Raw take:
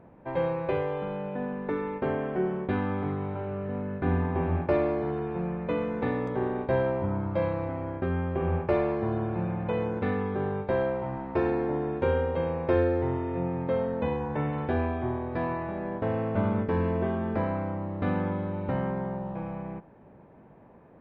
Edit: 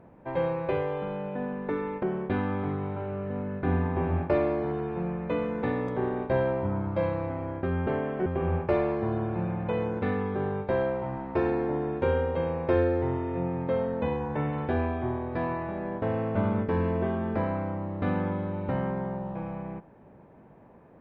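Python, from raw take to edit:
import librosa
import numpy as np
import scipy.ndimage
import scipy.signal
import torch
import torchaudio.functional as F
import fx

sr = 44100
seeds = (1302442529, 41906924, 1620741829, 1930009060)

y = fx.edit(x, sr, fx.move(start_s=2.03, length_s=0.39, to_s=8.26), tone=tone)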